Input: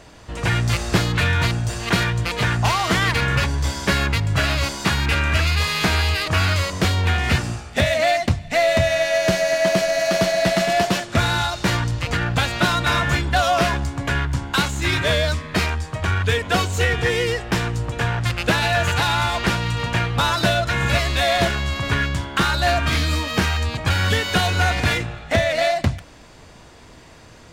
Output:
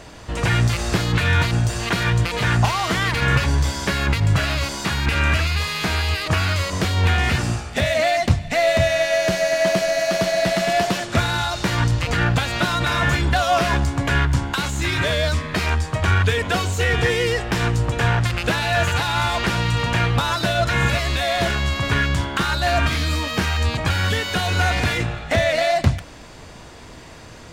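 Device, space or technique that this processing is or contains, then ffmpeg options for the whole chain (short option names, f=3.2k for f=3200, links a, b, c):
de-esser from a sidechain: -filter_complex "[0:a]asplit=2[a][b];[b]highpass=4.6k,apad=whole_len=1213997[c];[a][c]sidechaincompress=threshold=-36dB:ratio=4:attack=4.2:release=51,volume=4.5dB"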